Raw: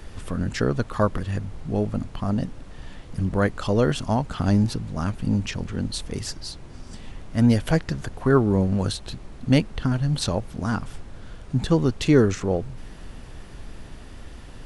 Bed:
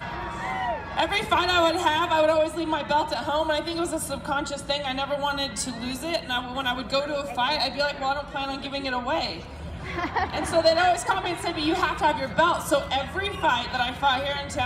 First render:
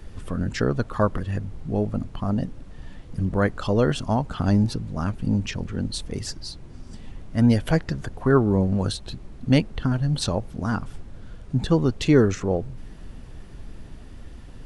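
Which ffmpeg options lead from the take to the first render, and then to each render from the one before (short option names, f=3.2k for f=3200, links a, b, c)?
-af "afftdn=nr=6:nf=-42"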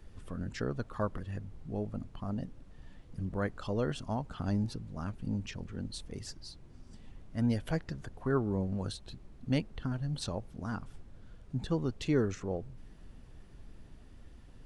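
-af "volume=-12dB"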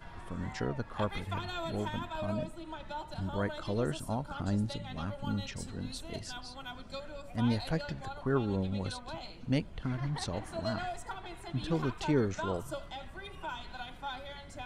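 -filter_complex "[1:a]volume=-18dB[a];[0:a][a]amix=inputs=2:normalize=0"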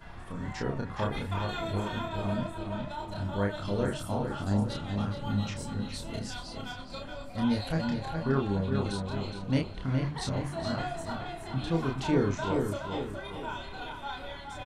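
-filter_complex "[0:a]asplit=2[a][b];[b]adelay=30,volume=-2.5dB[c];[a][c]amix=inputs=2:normalize=0,asplit=2[d][e];[e]adelay=418,lowpass=f=3.4k:p=1,volume=-5dB,asplit=2[f][g];[g]adelay=418,lowpass=f=3.4k:p=1,volume=0.46,asplit=2[h][i];[i]adelay=418,lowpass=f=3.4k:p=1,volume=0.46,asplit=2[j][k];[k]adelay=418,lowpass=f=3.4k:p=1,volume=0.46,asplit=2[l][m];[m]adelay=418,lowpass=f=3.4k:p=1,volume=0.46,asplit=2[n][o];[o]adelay=418,lowpass=f=3.4k:p=1,volume=0.46[p];[d][f][h][j][l][n][p]amix=inputs=7:normalize=0"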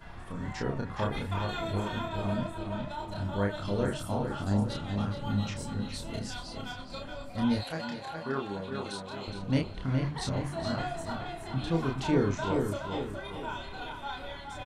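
-filter_complex "[0:a]asettb=1/sr,asplit=3[a][b][c];[a]atrim=end=7.634[d];[b]atrim=start=7.63:end=9.28,asetpts=PTS-STARTPTS,afade=t=in:d=0.004:c=qsin,afade=t=out:st=1.646:d=0.004:c=qsin,highpass=f=510:p=1[e];[c]atrim=start=9.276[f];[d][e]acrossfade=d=0.004:c1=hsin:c2=qsin[g];[g][f]acrossfade=d=0.004:c1=qsin:c2=hsin"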